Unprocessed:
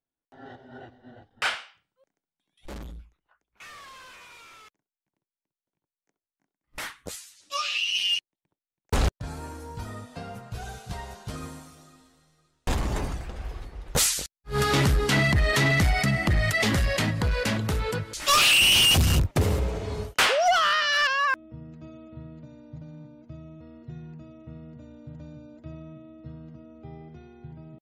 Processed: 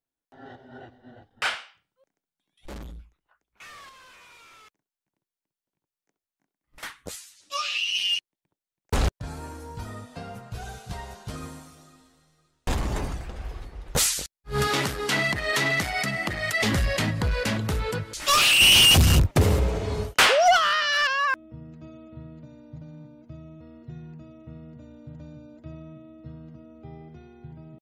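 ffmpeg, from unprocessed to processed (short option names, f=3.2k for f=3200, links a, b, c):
-filter_complex "[0:a]asettb=1/sr,asplit=3[a][b][c];[a]atrim=end=3.894[d];[b]atrim=start=3.89:end=6.83,asetpts=PTS-STARTPTS,afade=t=in:d=0.004:c=qsin,afade=t=out:st=2.936:d=0.004:c=qsin,acompressor=threshold=-51dB:ratio=3:attack=3.2:release=140:knee=1:detection=peak[e];[c]atrim=start=6.826[f];[d][e]acrossfade=d=0.004:c1=hsin:c2=qsin[g];[g][f]acrossfade=d=0.004:c1=qsin:c2=hsin,asettb=1/sr,asplit=3[h][i][j];[h]atrim=end=14.674[k];[i]atrim=start=14.67:end=16.62,asetpts=PTS-STARTPTS,afade=t=in:d=0.004:c=qsin,afade=t=out:st=1.946:d=0.004:c=qsin,highpass=f=400:p=1[l];[j]atrim=start=16.616[m];[k][l]acrossfade=d=0.004:c1=hsin:c2=qsin[n];[n][m]acrossfade=d=0.004:c1=qsin:c2=hsin,asplit=3[o][p][q];[o]atrim=end=18.602[r];[p]atrim=start=18.598:end=20.572,asetpts=PTS-STARTPTS,volume=3.5dB[s];[q]atrim=start=20.568[t];[r][s]acrossfade=d=0.004:c1=hsin:c2=hsin[u];[u][t]acrossfade=d=0.004:c1=hsin:c2=hsin"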